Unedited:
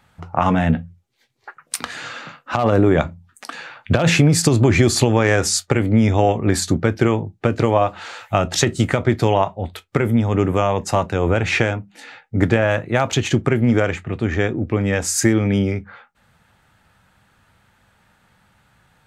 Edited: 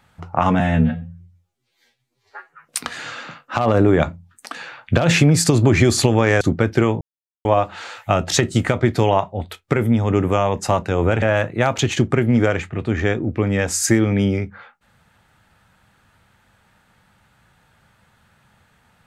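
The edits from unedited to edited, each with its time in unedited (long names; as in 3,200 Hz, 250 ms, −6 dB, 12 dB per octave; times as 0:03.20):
0:00.60–0:01.62: time-stretch 2×
0:05.39–0:06.65: remove
0:07.25–0:07.69: silence
0:11.46–0:12.56: remove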